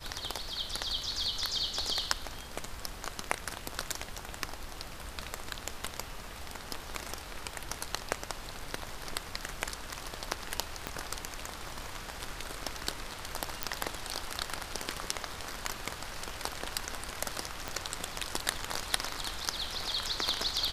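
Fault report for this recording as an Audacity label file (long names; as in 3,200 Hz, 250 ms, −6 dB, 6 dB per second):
10.870000	10.870000	click −17 dBFS
13.630000	13.630000	click −12 dBFS
17.680000	17.680000	click −18 dBFS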